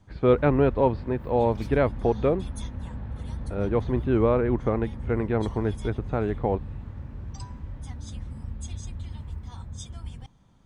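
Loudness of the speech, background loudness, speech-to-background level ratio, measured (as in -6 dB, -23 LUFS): -25.5 LUFS, -37.5 LUFS, 12.0 dB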